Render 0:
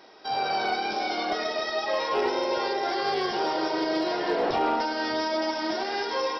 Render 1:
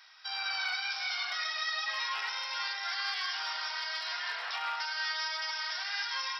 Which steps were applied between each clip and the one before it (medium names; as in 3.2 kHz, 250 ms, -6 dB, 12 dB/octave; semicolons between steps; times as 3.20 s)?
high-pass 1.3 kHz 24 dB/octave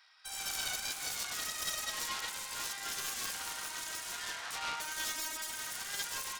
self-modulated delay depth 0.25 ms; upward expansion 1.5:1, over -47 dBFS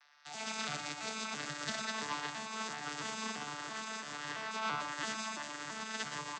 vocoder on a broken chord bare fifth, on D3, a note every 335 ms; delay 119 ms -9 dB